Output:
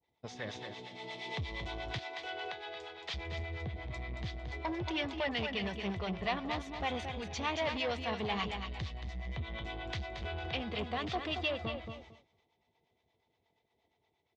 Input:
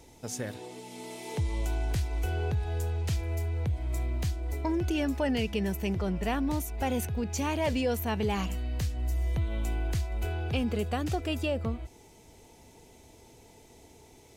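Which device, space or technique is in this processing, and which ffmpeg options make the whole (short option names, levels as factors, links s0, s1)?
guitar amplifier with harmonic tremolo: -filter_complex "[0:a]aecho=1:1:226|452|678:0.398|0.115|0.0335,agate=range=0.0224:threshold=0.00891:ratio=3:detection=peak,asettb=1/sr,asplit=3[s0][s1][s2];[s0]atrim=end=1.984[s3];[s1]atrim=start=1.98:end=3.14,asetpts=PTS-STARTPTS,afade=t=in:d=0.004:c=qsin,afade=t=out:st=1.156:d=0.004:c=qsin,highpass=480[s4];[s2]atrim=start=3.136[s5];[s3][s4]acrossfade=d=0.004:c1=hsin:c2=qsin[s6];[s6][s5]acrossfade=d=0.004:c1=qsin:c2=hsin,acrossover=split=590[s7][s8];[s7]aeval=exprs='val(0)*(1-0.7/2+0.7/2*cos(2*PI*8.5*n/s))':c=same[s9];[s8]aeval=exprs='val(0)*(1-0.7/2-0.7/2*cos(2*PI*8.5*n/s))':c=same[s10];[s9][s10]amix=inputs=2:normalize=0,asoftclip=type=tanh:threshold=0.0376,highpass=80,equalizer=f=270:t=q:w=4:g=-5,equalizer=f=710:t=q:w=4:g=6,equalizer=f=1100:t=q:w=4:g=7,equalizer=f=2000:t=q:w=4:g=8,equalizer=f=3500:t=q:w=4:g=8,lowpass=f=4600:w=0.5412,lowpass=f=4600:w=1.3066,adynamicequalizer=threshold=0.00355:dfrequency=2300:dqfactor=0.7:tfrequency=2300:tqfactor=0.7:attack=5:release=100:ratio=0.375:range=3:mode=boostabove:tftype=highshelf,volume=0.794"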